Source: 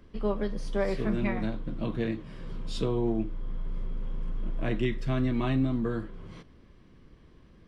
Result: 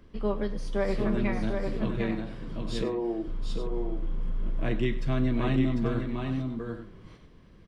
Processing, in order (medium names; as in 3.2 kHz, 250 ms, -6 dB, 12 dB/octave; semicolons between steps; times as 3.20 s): 2.83–3.28 s: Chebyshev band-pass 290–1200 Hz, order 3; multi-tap echo 102/748/840 ms -17/-5.5/-12.5 dB